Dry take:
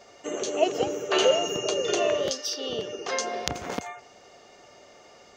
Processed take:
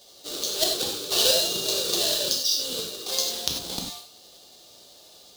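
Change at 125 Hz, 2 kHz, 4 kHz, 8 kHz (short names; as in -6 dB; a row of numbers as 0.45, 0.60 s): -1.5, -4.0, +8.0, +7.5 dB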